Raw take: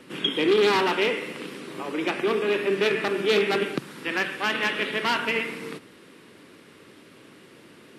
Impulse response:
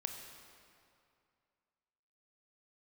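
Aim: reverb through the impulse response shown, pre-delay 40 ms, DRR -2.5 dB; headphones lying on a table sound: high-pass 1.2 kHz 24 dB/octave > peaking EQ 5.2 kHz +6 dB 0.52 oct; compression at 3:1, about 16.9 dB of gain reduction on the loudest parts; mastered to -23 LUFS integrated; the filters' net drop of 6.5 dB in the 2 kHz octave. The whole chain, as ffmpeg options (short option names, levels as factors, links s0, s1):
-filter_complex "[0:a]equalizer=f=2000:t=o:g=-8.5,acompressor=threshold=0.00891:ratio=3,asplit=2[s0][s1];[1:a]atrim=start_sample=2205,adelay=40[s2];[s1][s2]afir=irnorm=-1:irlink=0,volume=1.41[s3];[s0][s3]amix=inputs=2:normalize=0,highpass=f=1200:w=0.5412,highpass=f=1200:w=1.3066,equalizer=f=5200:t=o:w=0.52:g=6,volume=8.41"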